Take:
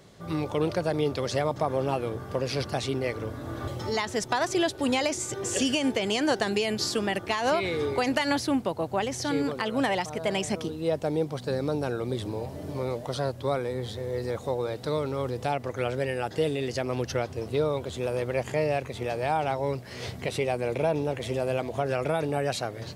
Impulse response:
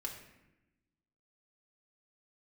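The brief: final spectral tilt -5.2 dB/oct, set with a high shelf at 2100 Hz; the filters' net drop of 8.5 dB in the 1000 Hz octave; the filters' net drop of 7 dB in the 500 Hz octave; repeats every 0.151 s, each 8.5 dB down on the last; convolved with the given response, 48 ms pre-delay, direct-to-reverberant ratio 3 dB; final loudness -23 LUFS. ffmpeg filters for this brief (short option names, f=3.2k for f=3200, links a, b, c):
-filter_complex "[0:a]equalizer=f=500:t=o:g=-6,equalizer=f=1k:t=o:g=-8.5,highshelf=f=2.1k:g=-4,aecho=1:1:151|302|453|604:0.376|0.143|0.0543|0.0206,asplit=2[a][b];[1:a]atrim=start_sample=2205,adelay=48[c];[b][c]afir=irnorm=-1:irlink=0,volume=-2dB[d];[a][d]amix=inputs=2:normalize=0,volume=7.5dB"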